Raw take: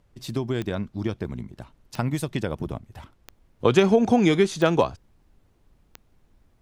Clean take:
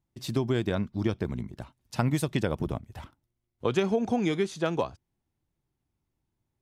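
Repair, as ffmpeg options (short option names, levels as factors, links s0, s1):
-af "adeclick=t=4,agate=range=0.0891:threshold=0.002,asetnsamples=n=441:p=0,asendcmd='3.3 volume volume -8dB',volume=1"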